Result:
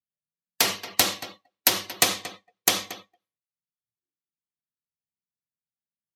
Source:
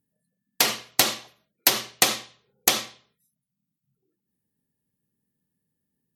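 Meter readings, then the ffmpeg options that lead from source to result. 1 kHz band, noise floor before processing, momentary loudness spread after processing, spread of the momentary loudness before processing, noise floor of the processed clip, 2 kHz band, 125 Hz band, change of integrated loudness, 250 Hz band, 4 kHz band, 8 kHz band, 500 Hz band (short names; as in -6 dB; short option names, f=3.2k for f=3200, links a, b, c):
-1.0 dB, -83 dBFS, 17 LU, 10 LU, under -85 dBFS, -1.0 dB, +0.5 dB, -1.0 dB, -0.5 dB, -1.0 dB, -1.0 dB, -0.5 dB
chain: -filter_complex "[0:a]asplit=2[a][b];[b]adelay=229,lowpass=f=3.9k:p=1,volume=-13dB,asplit=2[c][d];[d]adelay=229,lowpass=f=3.9k:p=1,volume=0.15[e];[a][c][e]amix=inputs=3:normalize=0,afftdn=nr=26:nf=-43,afreqshift=-23,volume=-1dB"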